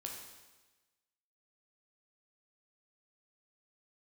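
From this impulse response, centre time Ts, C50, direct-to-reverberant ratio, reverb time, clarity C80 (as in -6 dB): 49 ms, 3.0 dB, 0.0 dB, 1.2 s, 5.5 dB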